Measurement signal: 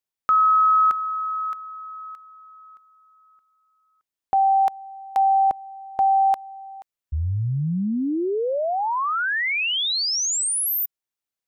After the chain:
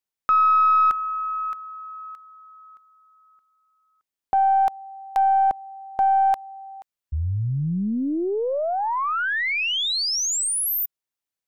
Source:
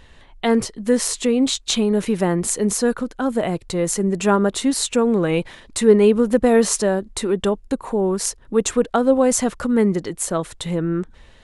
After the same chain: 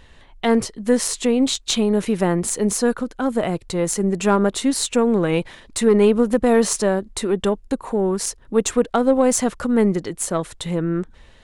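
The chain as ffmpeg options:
ffmpeg -i in.wav -af "aeval=exprs='0.841*(cos(1*acos(clip(val(0)/0.841,-1,1)))-cos(1*PI/2))+0.0841*(cos(3*acos(clip(val(0)/0.841,-1,1)))-cos(3*PI/2))+0.0106*(cos(8*acos(clip(val(0)/0.841,-1,1)))-cos(8*PI/2))':channel_layout=same,alimiter=level_in=6.5dB:limit=-1dB:release=50:level=0:latency=1,volume=-4dB" out.wav

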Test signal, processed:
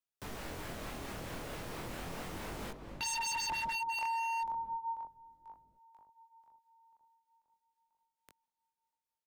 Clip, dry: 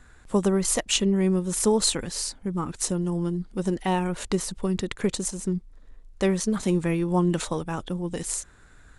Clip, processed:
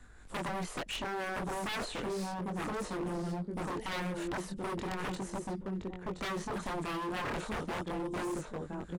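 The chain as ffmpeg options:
ffmpeg -i in.wav -filter_complex "[0:a]asplit=2[link_01][link_02];[link_02]adelay=1020,lowpass=frequency=920:poles=1,volume=-4.5dB,asplit=2[link_03][link_04];[link_04]adelay=1020,lowpass=frequency=920:poles=1,volume=0.21,asplit=2[link_05][link_06];[link_06]adelay=1020,lowpass=frequency=920:poles=1,volume=0.21[link_07];[link_03][link_05][link_07]amix=inputs=3:normalize=0[link_08];[link_01][link_08]amix=inputs=2:normalize=0,flanger=delay=20:depth=6.5:speed=0.36,acrossover=split=190|930[link_09][link_10][link_11];[link_09]acompressor=threshold=-44dB:ratio=6[link_12];[link_11]tremolo=f=4.5:d=0.4[link_13];[link_12][link_10][link_13]amix=inputs=3:normalize=0,acrossover=split=2800[link_14][link_15];[link_15]acompressor=threshold=-50dB:ratio=4:attack=1:release=60[link_16];[link_14][link_16]amix=inputs=2:normalize=0,aeval=exprs='0.0282*(abs(mod(val(0)/0.0282+3,4)-2)-1)':channel_layout=same" out.wav

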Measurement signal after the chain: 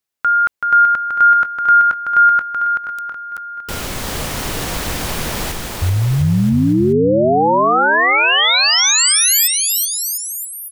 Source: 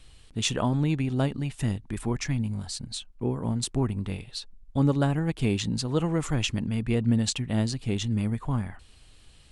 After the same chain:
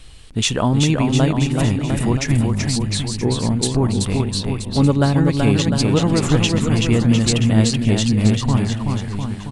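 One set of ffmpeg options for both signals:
ffmpeg -i in.wav -filter_complex "[0:a]asplit=2[link_01][link_02];[link_02]alimiter=limit=-21.5dB:level=0:latency=1:release=384,volume=-3dB[link_03];[link_01][link_03]amix=inputs=2:normalize=0,aecho=1:1:380|703|977.6|1211|1409:0.631|0.398|0.251|0.158|0.1,volume=5.5dB" out.wav

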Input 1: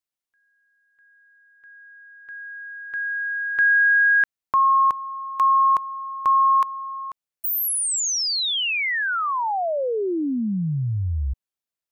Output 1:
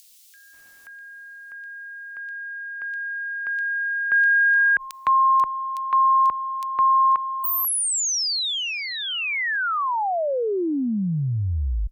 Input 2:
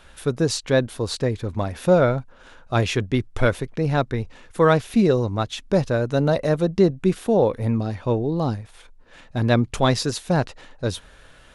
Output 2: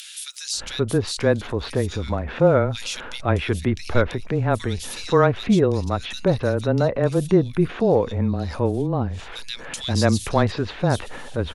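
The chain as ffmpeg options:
ffmpeg -i in.wav -filter_complex "[0:a]acrossover=split=2900[link_01][link_02];[link_01]adelay=530[link_03];[link_03][link_02]amix=inputs=2:normalize=0,afreqshift=-16,acompressor=mode=upward:threshold=-23dB:ratio=2.5:attack=2.8:release=36:knee=2.83:detection=peak" out.wav

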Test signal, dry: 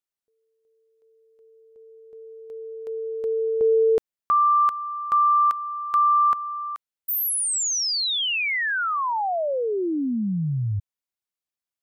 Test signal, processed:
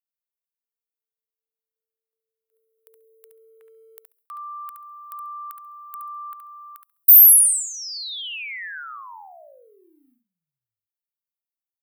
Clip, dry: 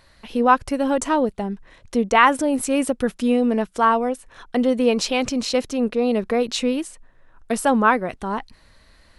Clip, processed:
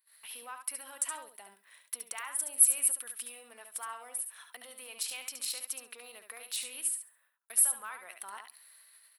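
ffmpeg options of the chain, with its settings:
ffmpeg -i in.wav -filter_complex "[0:a]acompressor=threshold=-21dB:ratio=16:attack=0.17:release=296:knee=6:detection=peak,highpass=1500,asplit=2[link_01][link_02];[link_02]aecho=0:1:68|136|204:0.119|0.0416|0.0146[link_03];[link_01][link_03]amix=inputs=2:normalize=0,agate=range=-20dB:threshold=-56dB:ratio=16:release=305:detection=rms,asplit=2[link_04][link_05];[link_05]aecho=0:1:71:0.447[link_06];[link_04][link_06]amix=inputs=2:normalize=0,aexciter=amount=13.4:drive=6:freq=9300,volume=-6.5dB" out.wav

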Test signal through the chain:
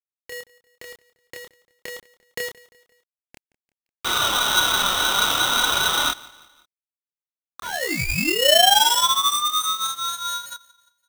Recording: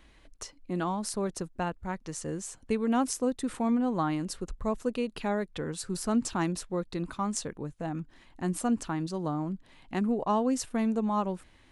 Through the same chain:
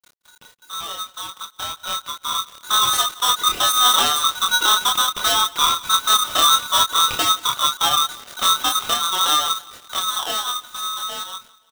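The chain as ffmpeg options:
ffmpeg -i in.wav -filter_complex "[0:a]acrossover=split=770[link_01][link_02];[link_02]acompressor=threshold=-41dB:ratio=12[link_03];[link_01][link_03]amix=inputs=2:normalize=0,lowpass=frequency=2300:width_type=q:width=0.5098,lowpass=frequency=2300:width_type=q:width=0.6013,lowpass=frequency=2300:width_type=q:width=0.9,lowpass=frequency=2300:width_type=q:width=2.563,afreqshift=-2700,asoftclip=type=hard:threshold=-27.5dB,flanger=delay=2.1:depth=3.2:regen=41:speed=0.3:shape=triangular,aeval=exprs='0.0237*(abs(mod(val(0)/0.0237+3,4)-2)-1)':channel_layout=same,acrusher=bits=8:mix=0:aa=0.000001,dynaudnorm=framelen=220:gausssize=21:maxgain=15dB,asplit=2[link_04][link_05];[link_05]aecho=0:1:173|346|519:0.0794|0.0381|0.0183[link_06];[link_04][link_06]amix=inputs=2:normalize=0,adynamicequalizer=threshold=0.02:dfrequency=1900:dqfactor=2.9:tfrequency=1900:tqfactor=2.9:attack=5:release=100:ratio=0.375:range=1.5:mode=boostabove:tftype=bell,asplit=2[link_07][link_08];[link_08]adelay=27,volume=-2.5dB[link_09];[link_07][link_09]amix=inputs=2:normalize=0,aeval=exprs='val(0)*sgn(sin(2*PI*1200*n/s))':channel_layout=same,volume=3.5dB" out.wav

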